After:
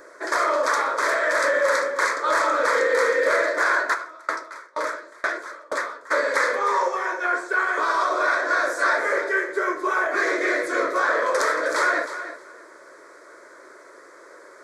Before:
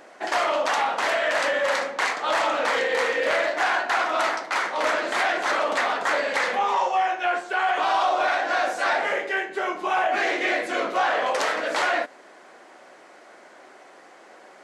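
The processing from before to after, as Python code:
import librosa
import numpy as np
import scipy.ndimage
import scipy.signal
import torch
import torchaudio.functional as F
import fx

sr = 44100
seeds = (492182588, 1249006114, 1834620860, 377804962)

y = fx.peak_eq(x, sr, hz=95.0, db=-7.5, octaves=0.35)
y = fx.fixed_phaser(y, sr, hz=770.0, stages=6)
y = fx.echo_feedback(y, sr, ms=313, feedback_pct=15, wet_db=-11.5)
y = fx.tremolo_decay(y, sr, direction='decaying', hz=2.1, depth_db=30, at=(3.93, 6.1), fade=0.02)
y = y * 10.0 ** (5.0 / 20.0)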